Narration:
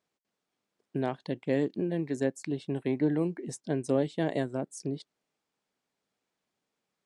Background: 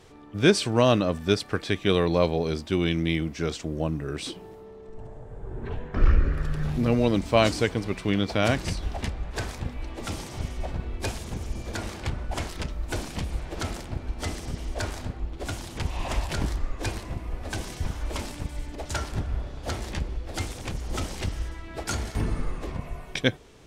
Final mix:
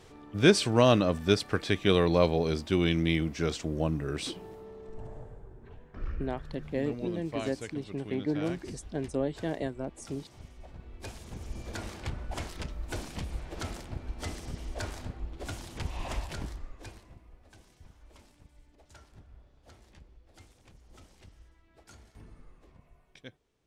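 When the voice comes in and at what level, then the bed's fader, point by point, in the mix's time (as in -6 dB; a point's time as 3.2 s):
5.25 s, -3.5 dB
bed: 5.21 s -1.5 dB
5.6 s -17 dB
10.66 s -17 dB
11.6 s -6 dB
16.09 s -6 dB
17.51 s -24.5 dB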